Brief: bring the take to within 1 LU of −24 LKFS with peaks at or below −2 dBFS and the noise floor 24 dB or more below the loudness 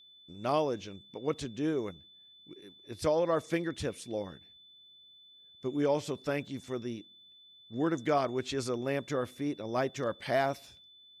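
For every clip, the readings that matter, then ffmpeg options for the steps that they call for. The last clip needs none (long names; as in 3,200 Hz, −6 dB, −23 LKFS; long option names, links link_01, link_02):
interfering tone 3,500 Hz; level of the tone −55 dBFS; integrated loudness −33.5 LKFS; sample peak −16.0 dBFS; target loudness −24.0 LKFS
→ -af "bandreject=frequency=3500:width=30"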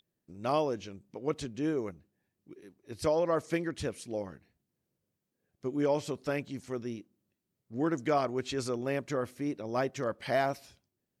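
interfering tone none found; integrated loudness −33.5 LKFS; sample peak −16.0 dBFS; target loudness −24.0 LKFS
→ -af "volume=9.5dB"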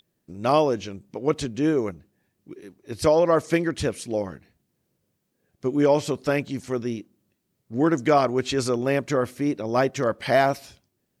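integrated loudness −24.0 LKFS; sample peak −6.5 dBFS; background noise floor −75 dBFS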